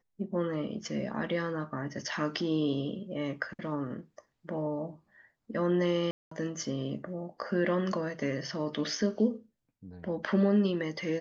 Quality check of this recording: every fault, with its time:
6.11–6.31 s: dropout 204 ms

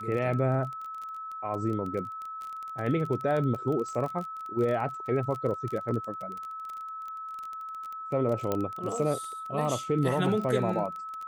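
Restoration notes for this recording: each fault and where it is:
crackle 21 per s -33 dBFS
whine 1.3 kHz -36 dBFS
8.52 s: pop -15 dBFS

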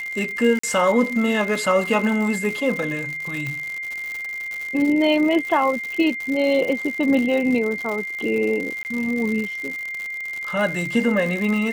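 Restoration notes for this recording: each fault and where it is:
crackle 140 per s -26 dBFS
whine 2.1 kHz -27 dBFS
0.59–0.63 s: dropout 44 ms
3.47 s: pop -16 dBFS
8.83–8.85 s: dropout 19 ms

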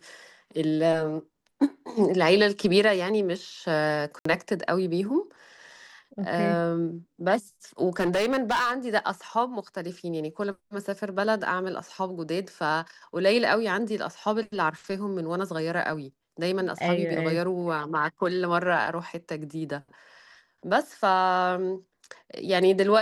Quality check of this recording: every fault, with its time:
4.19–4.25 s: dropout 64 ms
8.00–8.72 s: clipped -20.5 dBFS

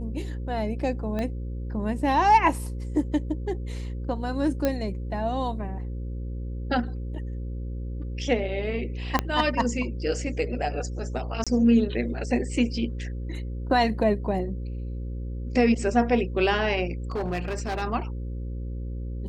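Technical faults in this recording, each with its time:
buzz 60 Hz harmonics 9 -32 dBFS
1.19 s: pop -18 dBFS
4.65 s: pop -11 dBFS
9.19 s: pop -8 dBFS
11.44–11.47 s: dropout 26 ms
17.12–17.83 s: clipped -24.5 dBFS

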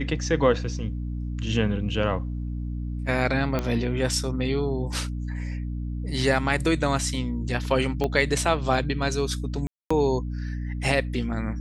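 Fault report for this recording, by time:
hum 60 Hz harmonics 5 -30 dBFS
3.59 s: pop -13 dBFS
8.04 s: pop -14 dBFS
9.67–9.90 s: dropout 235 ms

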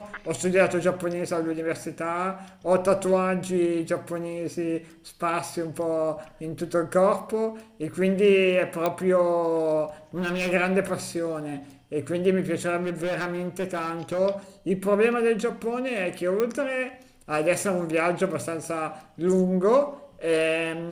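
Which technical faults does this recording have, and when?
8.86 s: pop -11 dBFS
10.17–10.53 s: clipped -23 dBFS
12.82–14.19 s: clipped -24 dBFS
16.40 s: pop -13 dBFS

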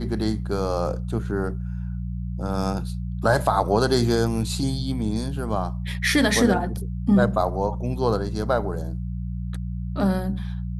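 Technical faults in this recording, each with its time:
hum 60 Hz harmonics 3 -29 dBFS

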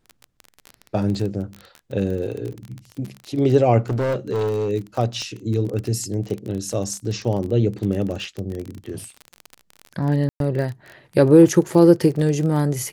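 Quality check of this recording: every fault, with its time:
crackle 24 per s -26 dBFS
3.89–4.70 s: clipped -18.5 dBFS
5.22 s: pop -19 dBFS
10.29–10.40 s: dropout 112 ms

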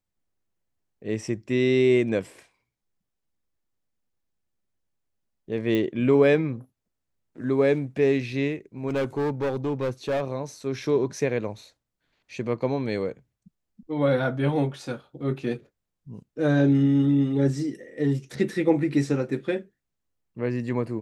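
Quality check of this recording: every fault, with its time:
5.75 s: pop -15 dBFS
8.88–10.22 s: clipped -22 dBFS

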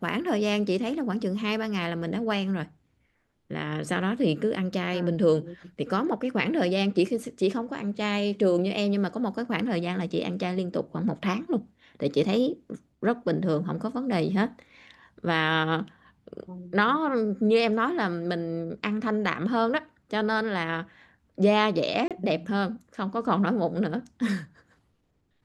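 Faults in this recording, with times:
22.08–22.11 s: dropout 27 ms

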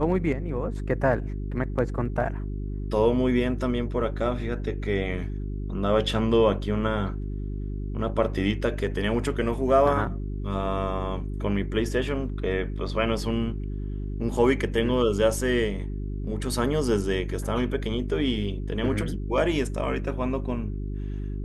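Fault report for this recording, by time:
hum 50 Hz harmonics 8 -31 dBFS

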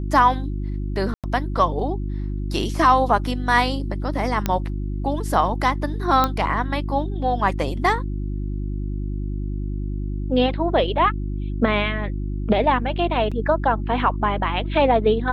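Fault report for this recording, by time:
hum 50 Hz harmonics 7 -26 dBFS
1.14–1.24 s: dropout 97 ms
4.46 s: pop -7 dBFS
6.24 s: pop -6 dBFS
13.31–13.32 s: dropout 6 ms

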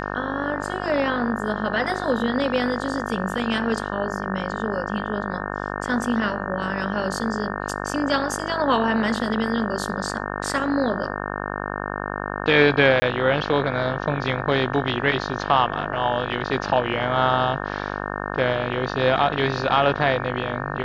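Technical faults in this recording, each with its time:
buzz 50 Hz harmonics 36 -29 dBFS
13.00–13.02 s: dropout 20 ms

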